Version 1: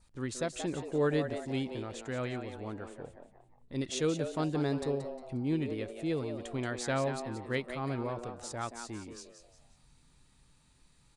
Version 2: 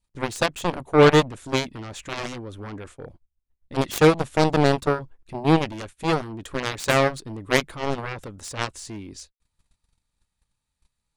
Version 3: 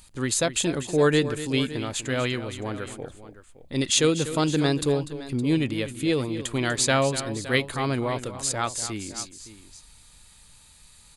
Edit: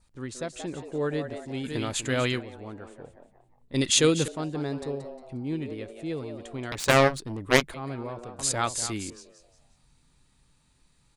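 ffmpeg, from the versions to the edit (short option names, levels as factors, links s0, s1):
-filter_complex "[2:a]asplit=3[s0][s1][s2];[0:a]asplit=5[s3][s4][s5][s6][s7];[s3]atrim=end=1.69[s8];[s0]atrim=start=1.63:end=2.43[s9];[s4]atrim=start=2.37:end=3.742[s10];[s1]atrim=start=3.738:end=4.282[s11];[s5]atrim=start=4.278:end=6.722[s12];[1:a]atrim=start=6.718:end=7.742[s13];[s6]atrim=start=7.738:end=8.392[s14];[s2]atrim=start=8.388:end=9.102[s15];[s7]atrim=start=9.098[s16];[s8][s9]acrossfade=d=0.06:c1=tri:c2=tri[s17];[s17][s10]acrossfade=d=0.06:c1=tri:c2=tri[s18];[s18][s11]acrossfade=d=0.004:c1=hsin:c2=hsin[s19];[s19][s12]acrossfade=d=0.004:c1=hsin:c2=hsin[s20];[s20][s13]acrossfade=d=0.004:c1=hsin:c2=hsin[s21];[s21][s14]acrossfade=d=0.004:c1=hsin:c2=hsin[s22];[s22][s15]acrossfade=d=0.004:c1=hsin:c2=hsin[s23];[s23][s16]acrossfade=d=0.004:c1=hsin:c2=hsin"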